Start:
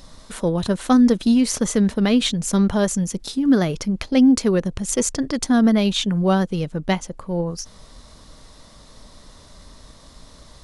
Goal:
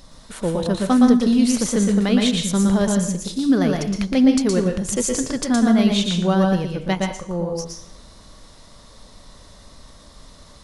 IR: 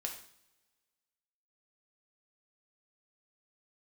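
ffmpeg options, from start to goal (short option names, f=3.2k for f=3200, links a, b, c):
-filter_complex "[0:a]asplit=2[a][b];[1:a]atrim=start_sample=2205,adelay=116[c];[b][c]afir=irnorm=-1:irlink=0,volume=-1dB[d];[a][d]amix=inputs=2:normalize=0,volume=-2dB"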